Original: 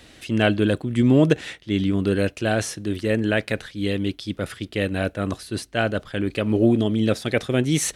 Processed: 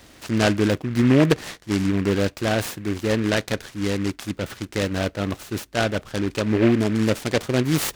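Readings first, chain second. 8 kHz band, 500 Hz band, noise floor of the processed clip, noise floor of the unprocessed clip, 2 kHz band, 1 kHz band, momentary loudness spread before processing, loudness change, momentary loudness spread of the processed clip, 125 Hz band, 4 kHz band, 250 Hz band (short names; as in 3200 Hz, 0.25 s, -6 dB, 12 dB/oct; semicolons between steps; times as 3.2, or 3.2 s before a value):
-1.0 dB, 0.0 dB, -50 dBFS, -50 dBFS, 0.0 dB, +2.0 dB, 9 LU, 0.0 dB, 10 LU, 0.0 dB, +1.0 dB, 0.0 dB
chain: noise-modulated delay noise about 1700 Hz, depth 0.077 ms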